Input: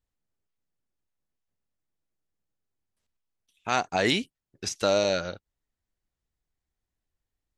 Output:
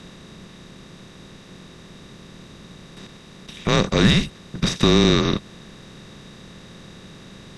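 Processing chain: spectral levelling over time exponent 0.4; small resonant body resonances 400/4000 Hz, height 13 dB, ringing for 35 ms; frequency shift -220 Hz

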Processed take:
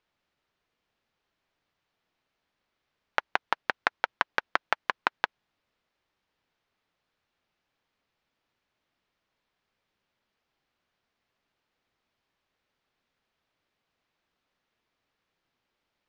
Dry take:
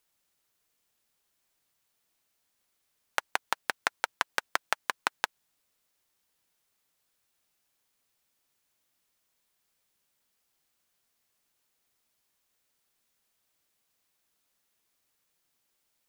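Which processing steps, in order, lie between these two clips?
distance through air 240 m; trim +4.5 dB

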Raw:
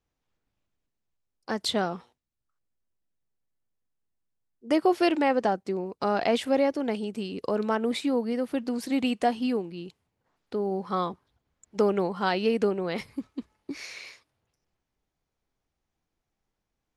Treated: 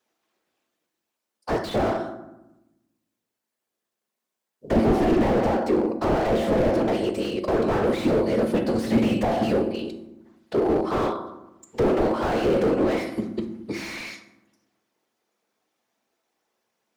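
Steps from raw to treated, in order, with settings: high-pass 290 Hz 24 dB/octave; hum notches 50/100/150/200/250/300/350/400 Hz; whisper effect; on a send at -6 dB: reverberation RT60 0.95 s, pre-delay 5 ms; on the sum: slew-rate limiter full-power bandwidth 20 Hz; trim +9 dB

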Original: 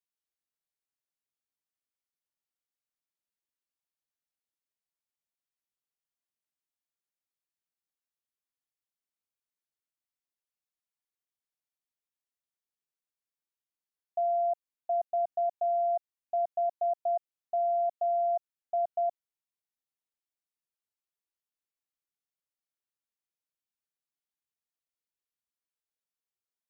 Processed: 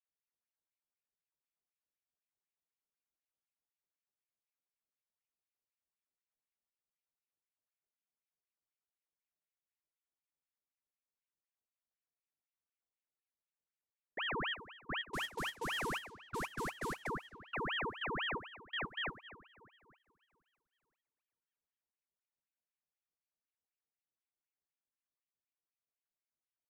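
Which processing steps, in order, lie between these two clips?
15.03–17.07 s: CVSD coder 64 kbps; two-slope reverb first 0.21 s, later 2.9 s, from -18 dB, DRR 4 dB; level-controlled noise filter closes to 830 Hz, open at -26.5 dBFS; peaking EQ 720 Hz -14.5 dB 0.8 oct; ring modulator with a swept carrier 1.4 kHz, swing 85%, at 4 Hz; trim +5 dB

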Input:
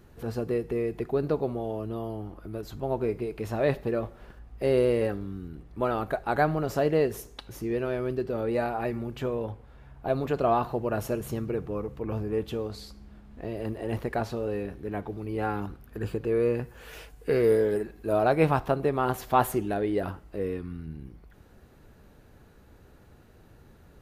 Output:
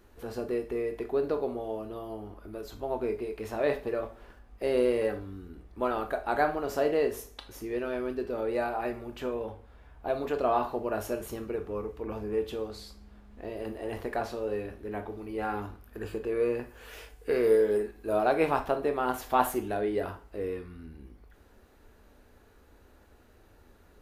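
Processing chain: peaking EQ 140 Hz -14.5 dB 0.87 oct; on a send: reverberation RT60 0.35 s, pre-delay 12 ms, DRR 6.5 dB; on the sum: trim -2 dB

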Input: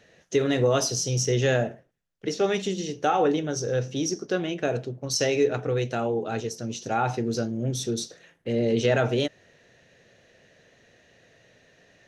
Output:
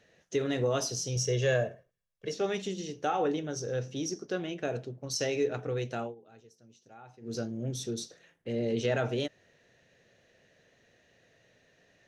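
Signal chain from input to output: 1.16–2.33 s: comb 1.8 ms, depth 64%; 6.01–7.35 s: dip -19.5 dB, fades 0.14 s; trim -7 dB

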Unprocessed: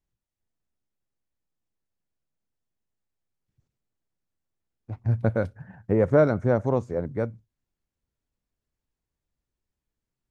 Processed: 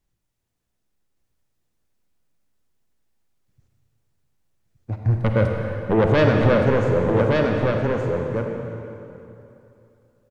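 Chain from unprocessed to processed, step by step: in parallel at -6 dB: sine folder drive 10 dB, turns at -9 dBFS; on the sum: delay 1169 ms -3.5 dB; reverberation RT60 2.9 s, pre-delay 38 ms, DRR 2 dB; trim -3.5 dB

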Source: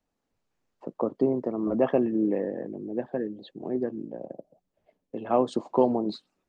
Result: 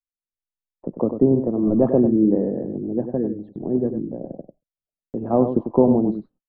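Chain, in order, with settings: low-pass 1.2 kHz 12 dB/octave; gate -50 dBFS, range -41 dB; tilt EQ -4.5 dB/octave; on a send: delay 97 ms -8.5 dB

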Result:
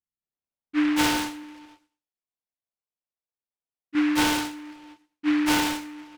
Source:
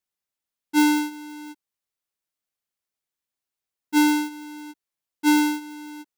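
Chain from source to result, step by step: local Wiener filter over 25 samples; low-pass 9.3 kHz; de-hum 206.8 Hz, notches 38; 1.43–3.95 s: bass shelf 410 Hz -9 dB; bands offset in time lows, highs 220 ms, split 340 Hz; Schroeder reverb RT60 0.37 s, combs from 26 ms, DRR 8 dB; delay time shaken by noise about 1.7 kHz, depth 0.13 ms

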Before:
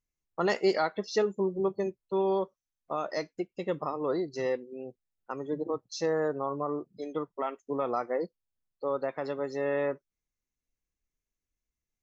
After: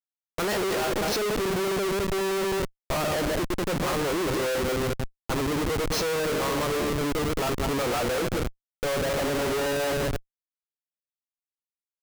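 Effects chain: backward echo that repeats 105 ms, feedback 46%, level -7 dB; Schmitt trigger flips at -41 dBFS; trim +5.5 dB

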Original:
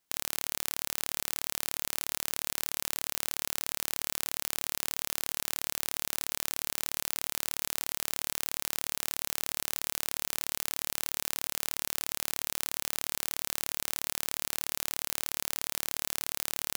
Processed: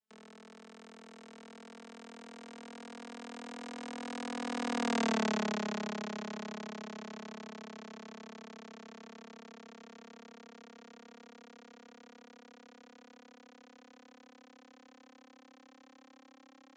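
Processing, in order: vocoder on a note that slides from G3, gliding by +7 st; Doppler pass-by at 5.09 s, 33 m/s, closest 11 m; trim +9.5 dB

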